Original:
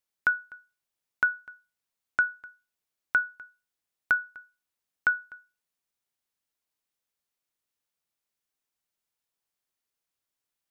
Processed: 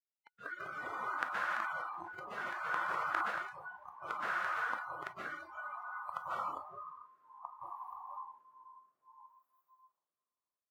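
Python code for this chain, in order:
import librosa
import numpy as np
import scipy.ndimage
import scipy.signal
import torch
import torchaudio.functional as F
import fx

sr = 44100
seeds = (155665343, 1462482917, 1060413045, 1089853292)

p1 = fx.gate_flip(x, sr, shuts_db=-31.0, range_db=-37)
p2 = scipy.signal.sosfilt(scipy.signal.butter(2, 180.0, 'highpass', fs=sr, output='sos'), p1)
p3 = fx.low_shelf(p2, sr, hz=370.0, db=-6.0)
p4 = p3 + fx.echo_feedback(p3, sr, ms=338, feedback_pct=40, wet_db=-7, dry=0)
p5 = fx.rev_plate(p4, sr, seeds[0], rt60_s=3.6, hf_ratio=0.85, predelay_ms=110, drr_db=-8.5)
p6 = fx.echo_pitch(p5, sr, ms=141, semitones=-3, count=2, db_per_echo=-3.0)
p7 = fx.rotary(p6, sr, hz=0.6)
p8 = fx.noise_reduce_blind(p7, sr, reduce_db=25)
y = fx.sustainer(p8, sr, db_per_s=25.0, at=(1.44, 3.31))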